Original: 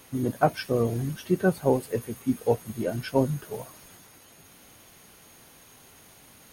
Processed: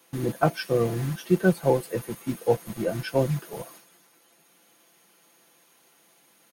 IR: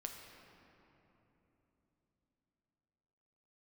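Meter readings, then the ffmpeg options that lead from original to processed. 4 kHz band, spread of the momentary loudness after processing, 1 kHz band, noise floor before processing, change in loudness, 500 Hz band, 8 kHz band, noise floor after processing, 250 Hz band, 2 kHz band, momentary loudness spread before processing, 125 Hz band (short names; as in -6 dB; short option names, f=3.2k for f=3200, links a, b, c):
+2.0 dB, 11 LU, -0.5 dB, -54 dBFS, +1.0 dB, +1.5 dB, +0.5 dB, -61 dBFS, 0.0 dB, +2.5 dB, 9 LU, +2.0 dB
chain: -filter_complex "[0:a]acrossover=split=180|830|2300[a][b][c][d];[a]acrusher=bits=6:mix=0:aa=0.000001[e];[e][b][c][d]amix=inputs=4:normalize=0,agate=range=-8dB:threshold=-49dB:ratio=16:detection=peak,aecho=1:1:5.9:0.53"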